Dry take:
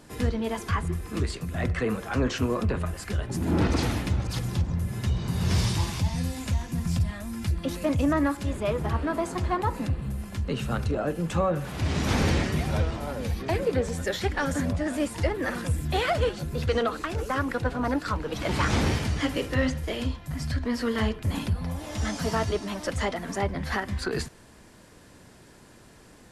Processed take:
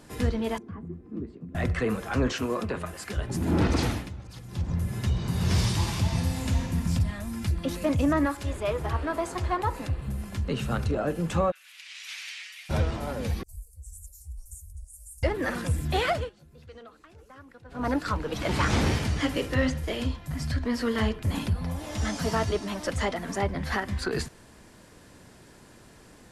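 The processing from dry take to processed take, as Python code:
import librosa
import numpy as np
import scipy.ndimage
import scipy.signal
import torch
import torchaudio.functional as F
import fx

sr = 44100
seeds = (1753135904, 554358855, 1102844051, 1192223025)

y = fx.bandpass_q(x, sr, hz=250.0, q=2.2, at=(0.58, 1.55))
y = fx.highpass(y, sr, hz=260.0, slope=6, at=(2.32, 3.17))
y = fx.reverb_throw(y, sr, start_s=5.69, length_s=0.93, rt60_s=2.6, drr_db=3.0)
y = fx.peak_eq(y, sr, hz=200.0, db=-10.0, octaves=0.97, at=(8.25, 10.08))
y = fx.ladder_highpass(y, sr, hz=2000.0, resonance_pct=40, at=(11.5, 12.69), fade=0.02)
y = fx.cheby2_bandstop(y, sr, low_hz=140.0, high_hz=3700.0, order=4, stop_db=50, at=(13.43, 15.23))
y = fx.edit(y, sr, fx.fade_down_up(start_s=3.87, length_s=0.85, db=-13.5, fade_s=0.24),
    fx.fade_down_up(start_s=16.1, length_s=1.78, db=-22.0, fade_s=0.2), tone=tone)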